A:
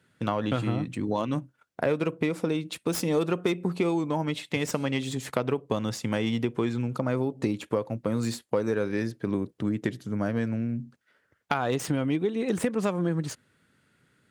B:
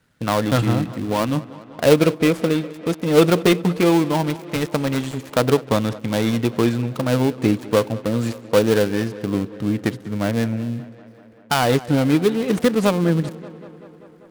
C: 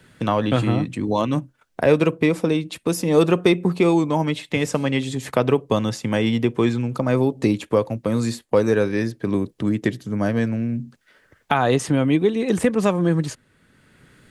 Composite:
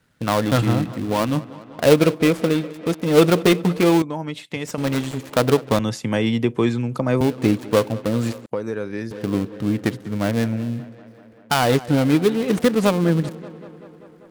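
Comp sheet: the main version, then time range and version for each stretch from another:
B
4.02–4.78 from A
5.79–7.21 from C
8.46–9.11 from A

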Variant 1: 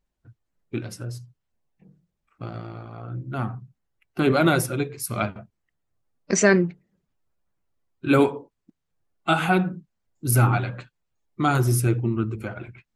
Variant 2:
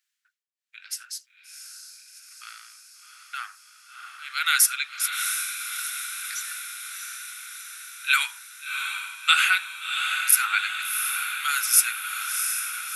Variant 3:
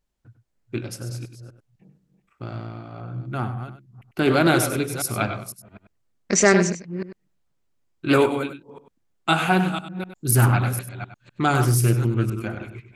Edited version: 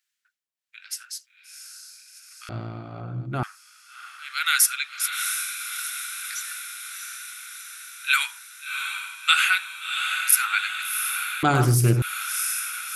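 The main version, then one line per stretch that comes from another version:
2
2.49–3.43 from 3
11.43–12.02 from 3
not used: 1

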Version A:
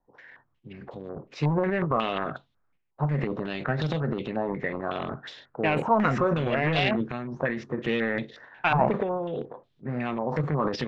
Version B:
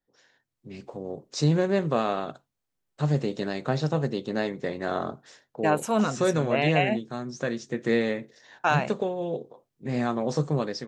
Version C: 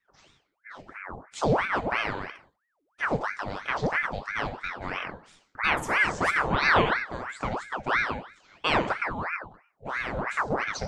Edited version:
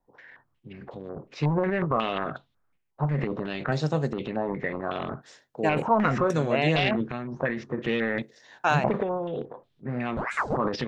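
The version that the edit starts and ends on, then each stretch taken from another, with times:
A
3.72–4.13 from B
5.22–5.69 from B
6.3–6.76 from B
8.22–8.84 from B
10.17–10.57 from C

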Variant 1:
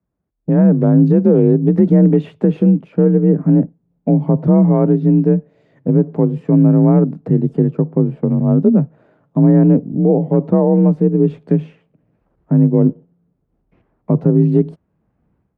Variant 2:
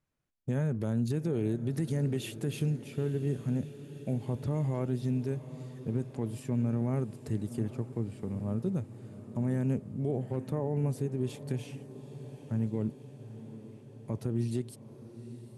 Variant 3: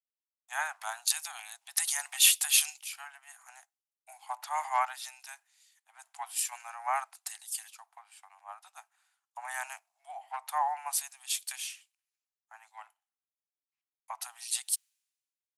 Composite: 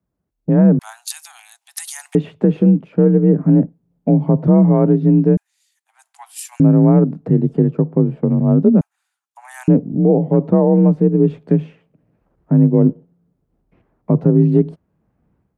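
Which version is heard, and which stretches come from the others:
1
0.79–2.15 from 3
5.37–6.6 from 3
8.81–9.68 from 3
not used: 2

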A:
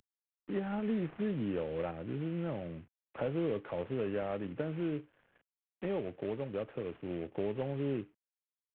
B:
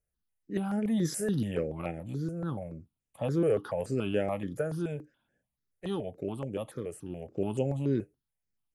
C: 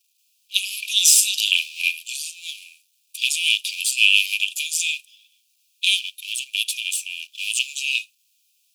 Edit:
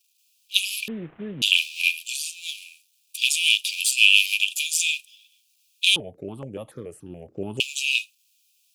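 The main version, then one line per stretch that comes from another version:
C
0.88–1.42 from A
5.96–7.6 from B

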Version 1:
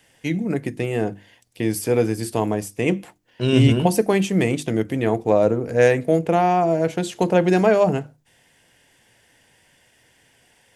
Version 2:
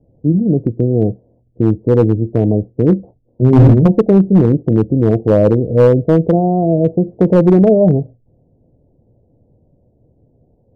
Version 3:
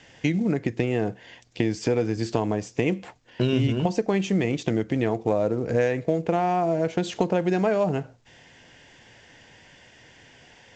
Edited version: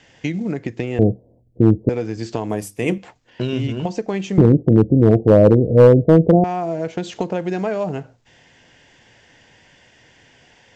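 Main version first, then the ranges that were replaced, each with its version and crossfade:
3
0.99–1.89 from 2
2.5–2.98 from 1
4.38–6.44 from 2

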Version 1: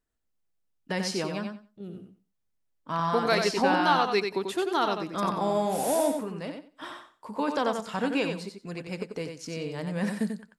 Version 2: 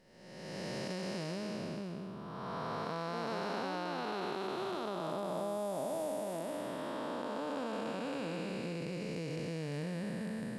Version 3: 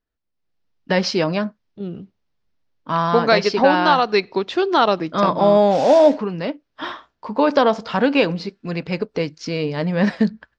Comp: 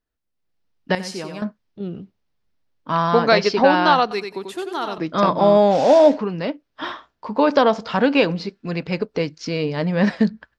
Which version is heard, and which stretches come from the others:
3
0.95–1.42 from 1
4.11–4.98 from 1
not used: 2

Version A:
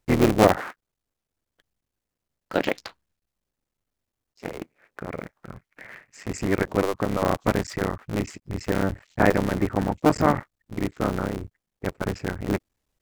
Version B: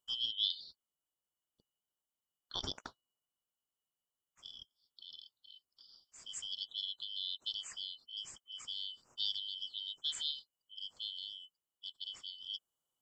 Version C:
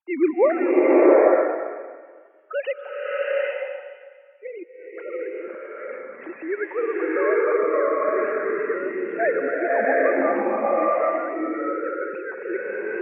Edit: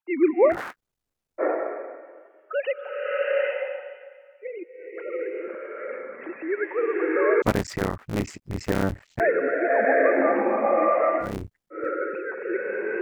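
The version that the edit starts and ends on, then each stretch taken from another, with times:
C
0.54–1.41 from A, crossfade 0.06 s
7.42–9.2 from A
11.27–11.78 from A, crossfade 0.16 s
not used: B

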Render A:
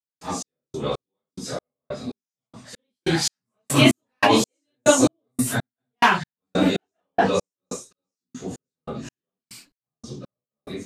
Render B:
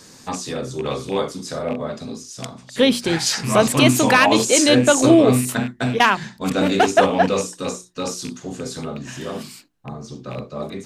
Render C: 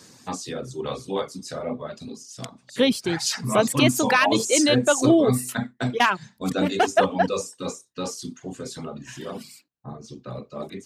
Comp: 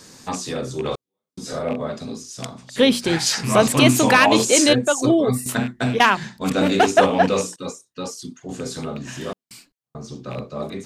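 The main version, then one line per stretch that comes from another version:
B
0.89–1.53 from A
4.73–5.46 from C
7.56–8.49 from C
9.33–9.95 from A

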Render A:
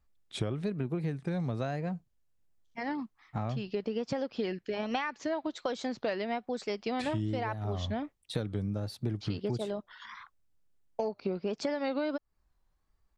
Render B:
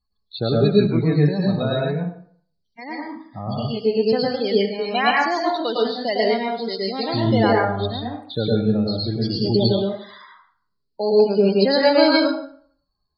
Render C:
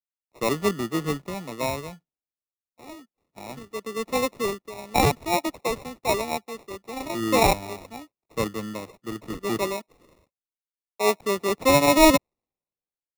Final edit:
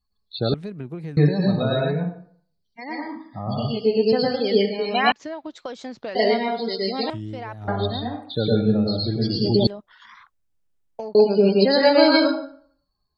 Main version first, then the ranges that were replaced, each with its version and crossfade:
B
0.54–1.17 from A
5.12–6.15 from A
7.1–7.68 from A
9.67–11.15 from A
not used: C

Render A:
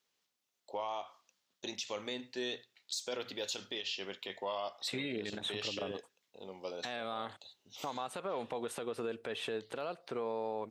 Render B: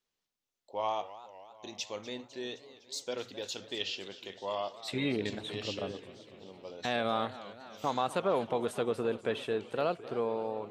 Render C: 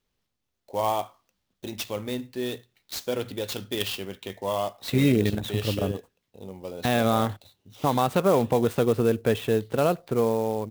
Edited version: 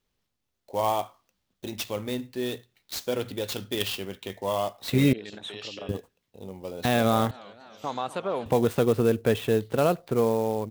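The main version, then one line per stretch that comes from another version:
C
5.13–5.89 from A
7.31–8.46 from B

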